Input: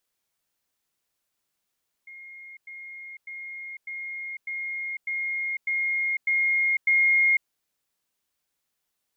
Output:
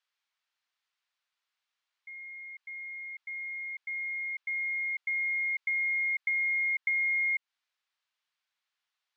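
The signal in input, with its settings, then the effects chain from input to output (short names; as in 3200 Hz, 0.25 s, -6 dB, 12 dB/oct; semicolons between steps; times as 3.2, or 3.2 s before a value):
level ladder 2140 Hz -41 dBFS, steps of 3 dB, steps 9, 0.50 s 0.10 s
compressor 5:1, threshold -28 dBFS; Butterworth band-pass 2100 Hz, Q 0.6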